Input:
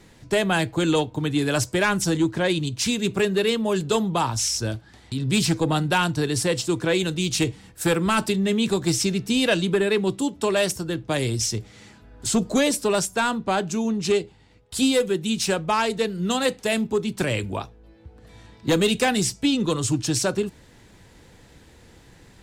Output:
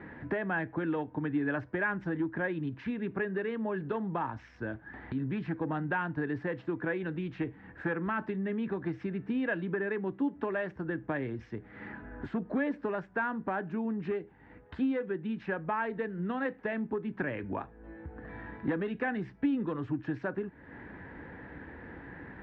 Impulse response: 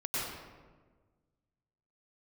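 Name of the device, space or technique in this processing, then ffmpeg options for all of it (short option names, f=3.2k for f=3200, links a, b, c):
bass amplifier: -af "acompressor=threshold=-39dB:ratio=4,highpass=63,equalizer=f=110:t=q:w=4:g=-7,equalizer=f=280:t=q:w=4:g=6,equalizer=f=890:t=q:w=4:g=3,equalizer=f=1.7k:t=q:w=4:g=10,lowpass=f=2k:w=0.5412,lowpass=f=2k:w=1.3066,volume=4dB"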